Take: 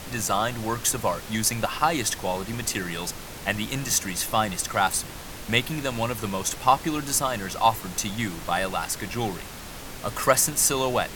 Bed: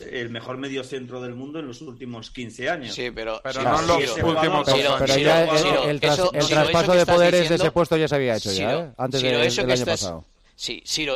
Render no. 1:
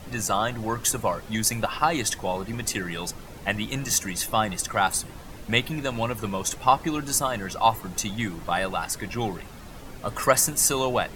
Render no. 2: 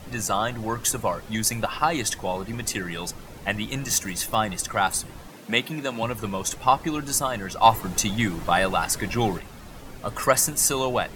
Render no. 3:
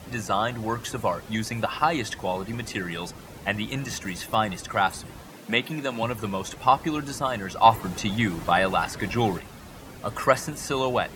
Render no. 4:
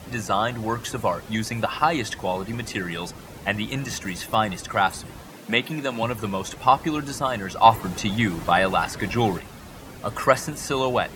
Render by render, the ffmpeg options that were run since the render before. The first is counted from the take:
-af "afftdn=nr=10:nf=-39"
-filter_complex "[0:a]asettb=1/sr,asplit=3[a][b][c];[a]atrim=end=3.894[d];[b]atrim=start=3.89:end=4.35,asetpts=PTS-STARTPTS,afade=t=in:d=0.004:c=qsin,afade=t=out:st=0.456:d=0.004:c=qsin,acrusher=bits=4:mode=log:mix=0:aa=0.000001[e];[c]atrim=start=4.346[f];[d][e]acrossfade=d=0.004:c1=hsin:c2=qsin[g];[g][f]acrossfade=d=0.004:c1=qsin:c2=hsin,asettb=1/sr,asplit=3[h][i][j];[h]atrim=end=5.284[k];[i]atrim=start=5.28:end=6.03,asetpts=PTS-STARTPTS,afade=t=in:d=0.004:c=qsin,afade=t=out:st=0.746:d=0.004:c=qsin,highpass=f=150:w=0.5412,highpass=f=150:w=1.3066[l];[j]atrim=start=6.026[m];[k][l]acrossfade=d=0.004:c1=hsin:c2=qsin[n];[n][m]acrossfade=d=0.004:c1=qsin:c2=hsin,asettb=1/sr,asplit=3[o][p][q];[o]atrim=end=7.624[r];[p]atrim=start=7.62:end=9.39,asetpts=PTS-STARTPTS,afade=t=in:d=0.004:c=qsin,afade=t=out:st=1.766:d=0.004:c=qsin,acontrast=20[s];[q]atrim=start=9.386[t];[r][s]acrossfade=d=0.004:c1=hsin:c2=qsin[u];[u][t]acrossfade=d=0.004:c1=qsin:c2=hsin"
-filter_complex "[0:a]acrossover=split=4000[a][b];[b]acompressor=threshold=-40dB:ratio=4:attack=1:release=60[c];[a][c]amix=inputs=2:normalize=0,highpass=51"
-af "volume=2dB"

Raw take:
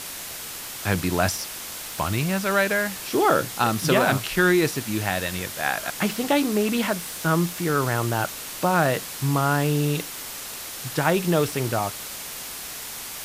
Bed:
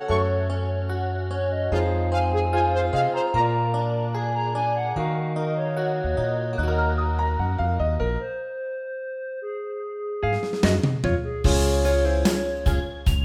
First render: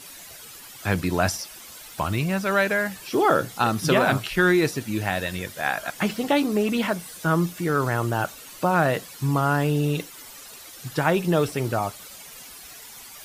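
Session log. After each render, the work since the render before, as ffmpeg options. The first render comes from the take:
-af "afftdn=nr=12:nf=-36"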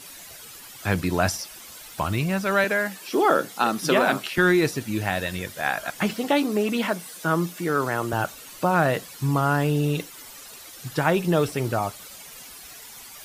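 -filter_complex "[0:a]asettb=1/sr,asplit=3[a][b][c];[a]atrim=end=2.644[d];[b]atrim=start=2.64:end=4.38,asetpts=PTS-STARTPTS,afade=t=in:d=0.004:c=qsin,afade=t=out:st=1.736:d=0.004:c=qsin,highpass=f=190:w=0.5412,highpass=f=190:w=1.3066[e];[c]atrim=start=4.376[f];[d][e]acrossfade=d=0.004:c1=hsin:c2=qsin[g];[g][f]acrossfade=d=0.004:c1=qsin:c2=hsin,asettb=1/sr,asplit=3[h][i][j];[h]atrim=end=6.134[k];[i]atrim=start=6.13:end=8.13,asetpts=PTS-STARTPTS,afade=t=in:d=0.004:c=qsin,afade=t=out:st=1.996:d=0.004:c=qsin,highpass=180[l];[j]atrim=start=8.126[m];[k][l]acrossfade=d=0.004:c1=hsin:c2=qsin[n];[n][m]acrossfade=d=0.004:c1=qsin:c2=hsin"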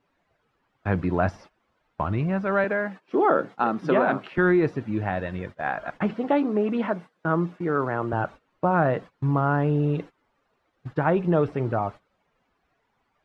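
-af "agate=range=-19dB:threshold=-35dB:ratio=16:detection=peak,lowpass=1.4k"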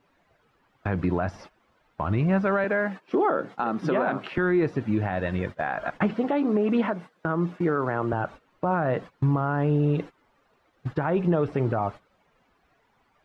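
-filter_complex "[0:a]asplit=2[a][b];[b]acompressor=threshold=-28dB:ratio=6,volume=-1dB[c];[a][c]amix=inputs=2:normalize=0,alimiter=limit=-14.5dB:level=0:latency=1:release=148"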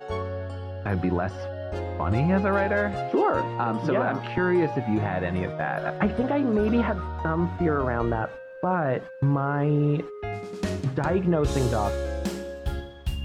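-filter_complex "[1:a]volume=-9dB[a];[0:a][a]amix=inputs=2:normalize=0"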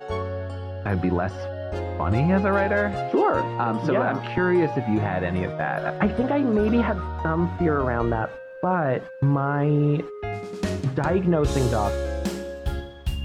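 -af "volume=2dB"

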